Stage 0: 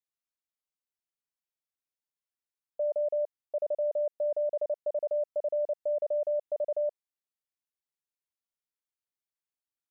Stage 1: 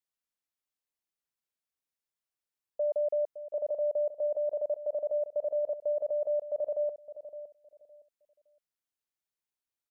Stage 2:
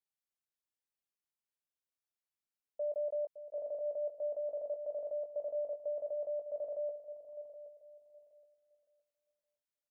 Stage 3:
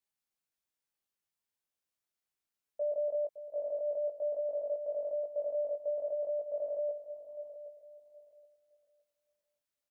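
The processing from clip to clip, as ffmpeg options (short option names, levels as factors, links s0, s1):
-filter_complex "[0:a]asplit=2[s0][s1];[s1]adelay=563,lowpass=f=820:p=1,volume=0.282,asplit=2[s2][s3];[s3]adelay=563,lowpass=f=820:p=1,volume=0.27,asplit=2[s4][s5];[s5]adelay=563,lowpass=f=820:p=1,volume=0.27[s6];[s0][s2][s4][s6]amix=inputs=4:normalize=0"
-filter_complex "[0:a]asplit=2[s0][s1];[s1]adelay=19,volume=0.447[s2];[s0][s2]amix=inputs=2:normalize=0,aecho=1:1:771|1542:0.211|0.0444,volume=0.422"
-filter_complex "[0:a]asplit=2[s0][s1];[s1]adelay=19,volume=0.531[s2];[s0][s2]amix=inputs=2:normalize=0,volume=1.19"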